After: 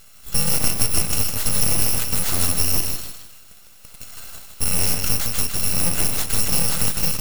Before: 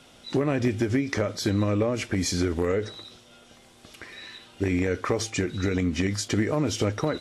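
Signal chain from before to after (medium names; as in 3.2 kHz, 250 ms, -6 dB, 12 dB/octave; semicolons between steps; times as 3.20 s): bit-reversed sample order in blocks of 128 samples; feedback echo behind a high-pass 156 ms, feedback 32%, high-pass 2.1 kHz, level -4.5 dB; full-wave rectifier; trim +7 dB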